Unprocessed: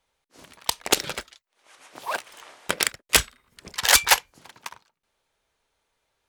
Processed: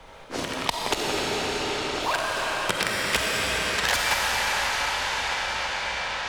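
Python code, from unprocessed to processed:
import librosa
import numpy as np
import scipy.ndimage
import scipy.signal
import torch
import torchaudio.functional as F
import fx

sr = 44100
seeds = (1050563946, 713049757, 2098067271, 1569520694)

y = fx.lowpass(x, sr, hz=fx.steps((0.0, 1500.0), (2.14, 3700.0)), slope=6)
y = 10.0 ** (-11.5 / 20.0) * np.tanh(y / 10.0 ** (-11.5 / 20.0))
y = fx.rev_freeverb(y, sr, rt60_s=4.4, hf_ratio=0.9, predelay_ms=5, drr_db=-4.5)
y = fx.band_squash(y, sr, depth_pct=100)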